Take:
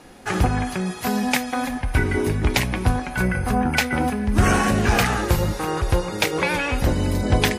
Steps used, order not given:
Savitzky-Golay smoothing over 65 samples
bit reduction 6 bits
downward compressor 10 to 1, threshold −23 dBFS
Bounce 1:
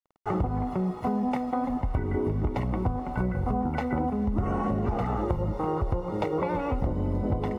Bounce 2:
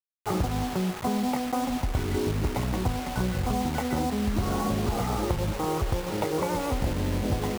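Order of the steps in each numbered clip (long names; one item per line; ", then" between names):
bit reduction, then Savitzky-Golay smoothing, then downward compressor
Savitzky-Golay smoothing, then downward compressor, then bit reduction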